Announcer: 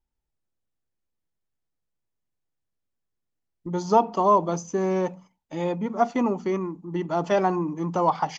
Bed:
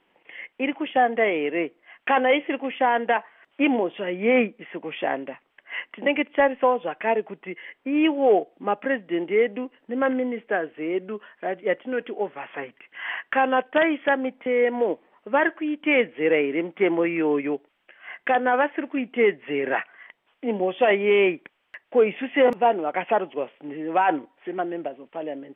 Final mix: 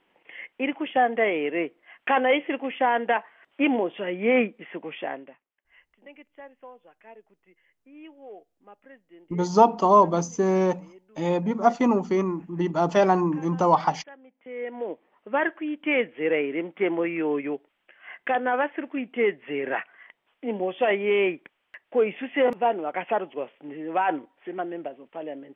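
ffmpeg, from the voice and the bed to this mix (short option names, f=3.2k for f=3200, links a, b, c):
-filter_complex "[0:a]adelay=5650,volume=2.5dB[a];[1:a]volume=20.5dB,afade=t=out:st=4.75:d=0.71:silence=0.0630957,afade=t=in:st=14.3:d=1.1:silence=0.0794328[b];[a][b]amix=inputs=2:normalize=0"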